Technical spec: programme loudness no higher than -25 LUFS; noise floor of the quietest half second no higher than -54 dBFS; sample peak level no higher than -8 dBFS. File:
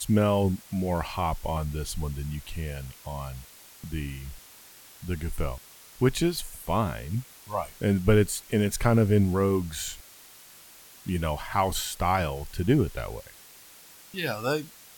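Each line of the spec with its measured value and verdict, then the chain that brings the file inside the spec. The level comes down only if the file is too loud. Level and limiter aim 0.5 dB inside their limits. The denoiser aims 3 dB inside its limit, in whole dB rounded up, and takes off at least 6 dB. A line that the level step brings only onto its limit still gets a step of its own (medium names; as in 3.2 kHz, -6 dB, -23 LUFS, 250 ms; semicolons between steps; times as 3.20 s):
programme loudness -28.0 LUFS: pass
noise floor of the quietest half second -51 dBFS: fail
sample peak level -7.0 dBFS: fail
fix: noise reduction 6 dB, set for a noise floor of -51 dBFS; peak limiter -8.5 dBFS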